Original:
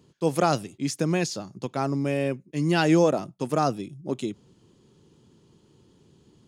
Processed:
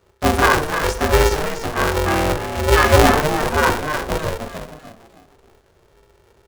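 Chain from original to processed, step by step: peaking EQ 1.4 kHz +14.5 dB 0.67 oct; waveshaping leveller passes 1; frequency-shifting echo 301 ms, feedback 36%, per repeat +60 Hz, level -7.5 dB; on a send at -1.5 dB: reverberation RT60 0.45 s, pre-delay 3 ms; on the sum: polarity switched at an audio rate 230 Hz; trim -3.5 dB

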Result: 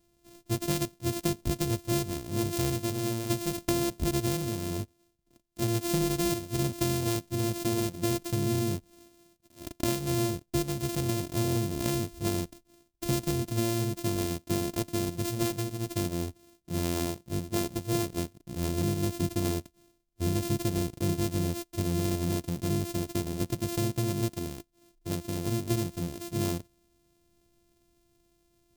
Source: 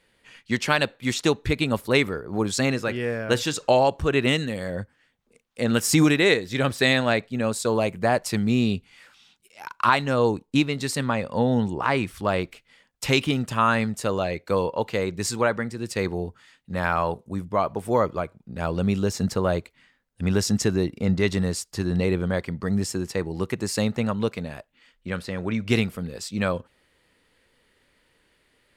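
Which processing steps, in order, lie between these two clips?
sorted samples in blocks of 128 samples; peaking EQ 1.4 kHz -14.5 dB 2.6 oct; compression, threshold -25 dBFS, peak gain reduction 8 dB; trim +1 dB

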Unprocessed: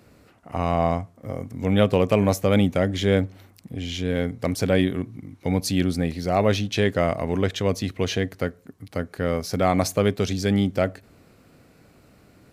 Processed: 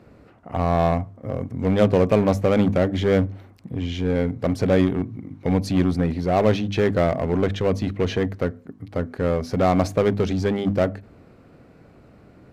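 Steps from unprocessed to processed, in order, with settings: low-pass 1.2 kHz 6 dB/octave; hum notches 50/100/150/200/250/300 Hz; in parallel at -7.5 dB: wavefolder -24.5 dBFS; on the sum: trim +2.5 dB

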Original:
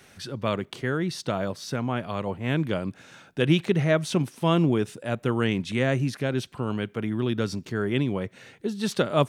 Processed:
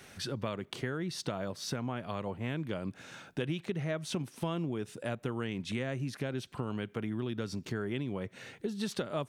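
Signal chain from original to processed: compression 6:1, threshold -32 dBFS, peak gain reduction 16 dB

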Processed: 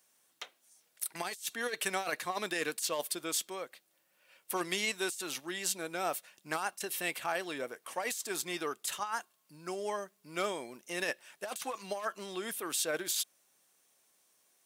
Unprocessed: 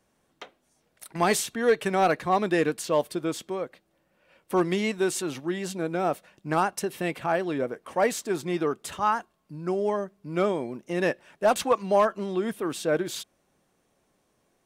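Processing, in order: tilt EQ +4.5 dB/octave; compressor with a negative ratio -25 dBFS, ratio -0.5; trim -8 dB

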